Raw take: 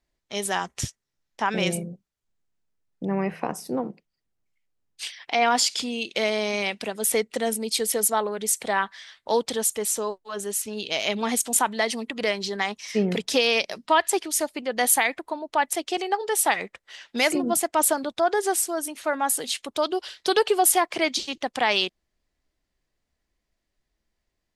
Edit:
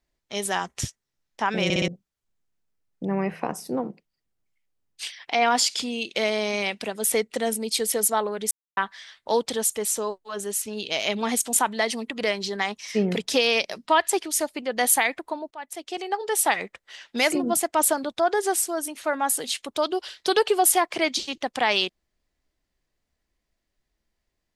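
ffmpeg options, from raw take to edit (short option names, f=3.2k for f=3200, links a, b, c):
-filter_complex "[0:a]asplit=8[a][b][c][d][e][f][g][h];[a]atrim=end=1.702[i];[b]atrim=start=1.638:end=1.702[j];[c]atrim=start=1.638:end=1.702[k];[d]atrim=start=1.638:end=1.702[l];[e]atrim=start=1.878:end=8.51,asetpts=PTS-STARTPTS,afade=t=out:st=6.628:d=0.004:c=hsin[m];[f]atrim=start=8.51:end=8.77,asetpts=PTS-STARTPTS,volume=0[n];[g]atrim=start=8.77:end=15.51,asetpts=PTS-STARTPTS,afade=t=in:d=0.004:c=hsin,afade=t=out:st=6.736:d=0.004:c=hsin:silence=0.0794328[o];[h]atrim=start=15.51,asetpts=PTS-STARTPTS,afade=t=in:d=0.84:silence=0.0794328[p];[i][j]acrossfade=d=0.004:c1=hsin:c2=hsin[q];[q][k]acrossfade=d=0.004:c1=hsin:c2=hsin[r];[r][l]acrossfade=d=0.004:c1=hsin:c2=hsin[s];[m][n][o][p]concat=n=4:v=0:a=1[t];[s][t]acrossfade=d=0.004:c1=hsin:c2=hsin"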